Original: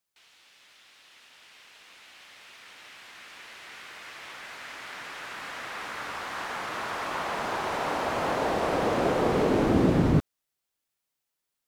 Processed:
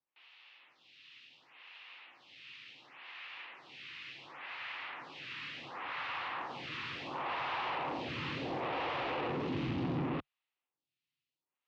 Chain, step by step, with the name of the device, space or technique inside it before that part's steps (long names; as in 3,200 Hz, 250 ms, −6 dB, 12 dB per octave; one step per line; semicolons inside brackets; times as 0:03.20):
vibe pedal into a guitar amplifier (phaser with staggered stages 0.7 Hz; tube saturation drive 31 dB, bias 0.25; loudspeaker in its box 99–4,100 Hz, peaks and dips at 140 Hz +5 dB, 200 Hz −9 dB, 430 Hz −7 dB, 630 Hz −7 dB, 1,500 Hz −6 dB, 2,700 Hz +5 dB)
level +1 dB